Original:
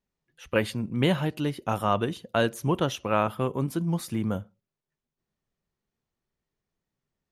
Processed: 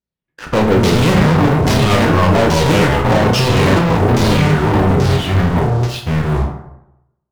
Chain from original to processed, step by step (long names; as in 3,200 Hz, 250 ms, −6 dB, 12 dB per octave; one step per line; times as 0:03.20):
each half-wave held at its own peak
high-pass filter 48 Hz 12 dB per octave
low-shelf EQ 430 Hz +4.5 dB
in parallel at 0 dB: brickwall limiter −14 dBFS, peak gain reduction 10 dB
on the sum: delay with pitch and tempo change per echo 80 ms, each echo −2 semitones, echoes 3
hard clipping −8 dBFS, distortion −13 dB
auto-filter low-pass saw down 1.2 Hz 430–6,100 Hz
leveller curve on the samples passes 5
on a send: flutter between parallel walls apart 5.5 metres, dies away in 0.21 s
on the sum: dense smooth reverb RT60 0.85 s, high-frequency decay 0.55×, DRR 3.5 dB
level −10 dB